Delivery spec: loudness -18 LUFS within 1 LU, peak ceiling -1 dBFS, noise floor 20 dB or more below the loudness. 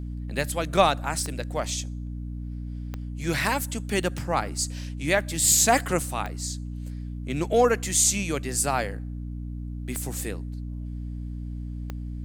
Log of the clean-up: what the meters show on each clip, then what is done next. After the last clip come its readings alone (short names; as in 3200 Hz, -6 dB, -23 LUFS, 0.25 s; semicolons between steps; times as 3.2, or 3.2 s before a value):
clicks 6; hum 60 Hz; harmonics up to 300 Hz; hum level -31 dBFS; loudness -26.5 LUFS; peak -5.5 dBFS; loudness target -18.0 LUFS
-> de-click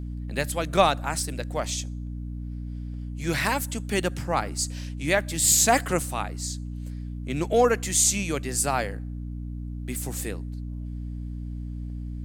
clicks 0; hum 60 Hz; harmonics up to 300 Hz; hum level -31 dBFS
-> notches 60/120/180/240/300 Hz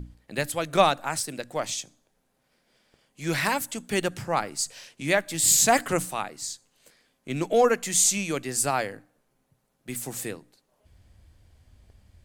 hum none; loudness -25.0 LUFS; peak -6.0 dBFS; loudness target -18.0 LUFS
-> gain +7 dB; limiter -1 dBFS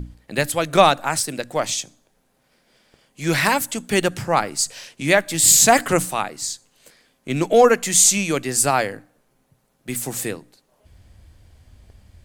loudness -18.5 LUFS; peak -1.0 dBFS; noise floor -65 dBFS